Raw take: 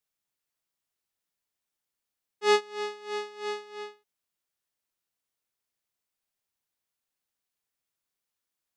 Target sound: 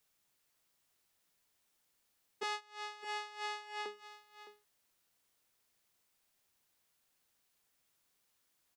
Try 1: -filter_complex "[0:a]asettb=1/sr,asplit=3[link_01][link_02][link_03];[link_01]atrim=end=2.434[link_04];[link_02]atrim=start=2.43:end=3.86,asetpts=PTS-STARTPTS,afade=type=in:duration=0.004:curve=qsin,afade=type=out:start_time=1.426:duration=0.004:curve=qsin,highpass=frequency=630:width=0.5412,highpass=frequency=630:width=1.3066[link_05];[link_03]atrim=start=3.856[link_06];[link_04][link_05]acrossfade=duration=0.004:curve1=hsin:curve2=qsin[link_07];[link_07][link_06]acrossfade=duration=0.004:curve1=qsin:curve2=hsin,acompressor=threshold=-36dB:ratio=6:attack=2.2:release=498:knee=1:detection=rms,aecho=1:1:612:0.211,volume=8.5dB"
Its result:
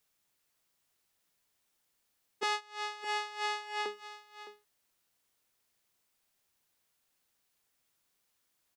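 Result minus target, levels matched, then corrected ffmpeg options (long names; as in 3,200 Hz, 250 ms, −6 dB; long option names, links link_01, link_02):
downward compressor: peak gain reduction −6 dB
-filter_complex "[0:a]asettb=1/sr,asplit=3[link_01][link_02][link_03];[link_01]atrim=end=2.434[link_04];[link_02]atrim=start=2.43:end=3.86,asetpts=PTS-STARTPTS,afade=type=in:duration=0.004:curve=qsin,afade=type=out:start_time=1.426:duration=0.004:curve=qsin,highpass=frequency=630:width=0.5412,highpass=frequency=630:width=1.3066[link_05];[link_03]atrim=start=3.856[link_06];[link_04][link_05]acrossfade=duration=0.004:curve1=hsin:curve2=qsin[link_07];[link_07][link_06]acrossfade=duration=0.004:curve1=qsin:curve2=hsin,acompressor=threshold=-43.5dB:ratio=6:attack=2.2:release=498:knee=1:detection=rms,aecho=1:1:612:0.211,volume=8.5dB"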